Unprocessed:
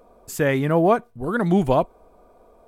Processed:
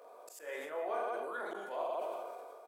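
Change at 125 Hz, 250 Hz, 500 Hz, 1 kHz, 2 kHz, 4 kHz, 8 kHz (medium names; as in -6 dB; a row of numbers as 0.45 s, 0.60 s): under -40 dB, -31.0 dB, -16.5 dB, -14.0 dB, -15.0 dB, -16.0 dB, no reading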